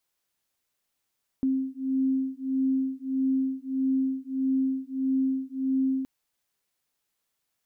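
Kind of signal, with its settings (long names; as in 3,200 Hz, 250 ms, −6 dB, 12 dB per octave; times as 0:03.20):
two tones that beat 264 Hz, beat 1.6 Hz, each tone −27 dBFS 4.62 s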